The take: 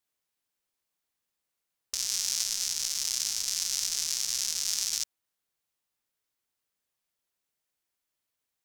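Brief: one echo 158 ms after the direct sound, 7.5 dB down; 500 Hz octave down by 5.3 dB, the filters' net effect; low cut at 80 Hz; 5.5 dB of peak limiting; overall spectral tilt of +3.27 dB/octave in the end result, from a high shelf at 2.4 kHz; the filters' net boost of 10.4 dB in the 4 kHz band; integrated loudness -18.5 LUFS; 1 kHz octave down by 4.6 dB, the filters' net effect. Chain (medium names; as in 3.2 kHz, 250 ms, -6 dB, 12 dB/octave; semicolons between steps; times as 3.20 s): high-pass 80 Hz; peaking EQ 500 Hz -5 dB; peaking EQ 1 kHz -7.5 dB; treble shelf 2.4 kHz +6.5 dB; peaking EQ 4 kHz +7.5 dB; peak limiter -8 dBFS; delay 158 ms -7.5 dB; trim +3.5 dB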